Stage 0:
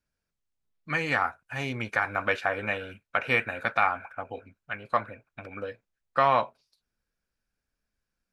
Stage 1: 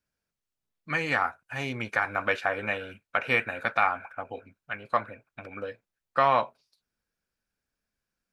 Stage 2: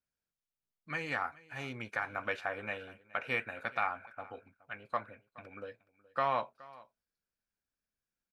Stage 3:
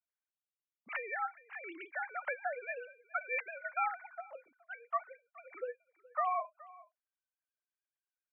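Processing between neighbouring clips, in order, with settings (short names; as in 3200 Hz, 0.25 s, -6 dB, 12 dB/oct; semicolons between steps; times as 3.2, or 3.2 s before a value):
low shelf 64 Hz -8.5 dB
echo 0.421 s -21.5 dB; gain -9 dB
sine-wave speech; gain -1.5 dB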